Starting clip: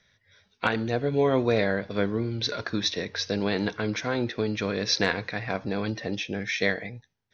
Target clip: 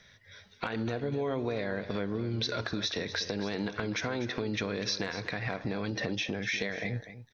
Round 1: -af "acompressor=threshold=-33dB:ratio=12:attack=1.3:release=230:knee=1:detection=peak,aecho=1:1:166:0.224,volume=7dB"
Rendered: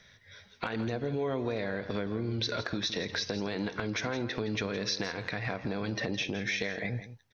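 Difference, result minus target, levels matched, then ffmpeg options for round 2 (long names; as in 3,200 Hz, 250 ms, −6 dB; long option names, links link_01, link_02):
echo 80 ms early
-af "acompressor=threshold=-33dB:ratio=12:attack=1.3:release=230:knee=1:detection=peak,aecho=1:1:246:0.224,volume=7dB"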